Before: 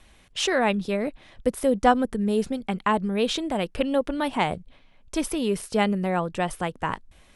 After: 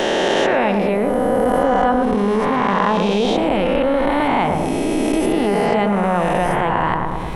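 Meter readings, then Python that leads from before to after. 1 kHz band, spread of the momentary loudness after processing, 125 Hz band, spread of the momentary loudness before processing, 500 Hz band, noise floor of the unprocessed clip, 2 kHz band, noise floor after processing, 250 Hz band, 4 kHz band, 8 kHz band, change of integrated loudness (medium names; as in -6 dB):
+9.5 dB, 3 LU, +8.5 dB, 9 LU, +9.0 dB, -56 dBFS, +8.0 dB, -20 dBFS, +7.5 dB, +5.0 dB, +1.5 dB, +8.0 dB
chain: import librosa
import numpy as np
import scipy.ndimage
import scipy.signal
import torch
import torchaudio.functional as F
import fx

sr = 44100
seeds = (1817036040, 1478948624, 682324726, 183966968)

y = fx.spec_swells(x, sr, rise_s=2.63)
y = fx.peak_eq(y, sr, hz=7900.0, db=-12.5, octaves=2.3)
y = fx.echo_filtered(y, sr, ms=109, feedback_pct=50, hz=1200.0, wet_db=-6.0)
y = fx.env_flatten(y, sr, amount_pct=70)
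y = F.gain(torch.from_numpy(y), -2.0).numpy()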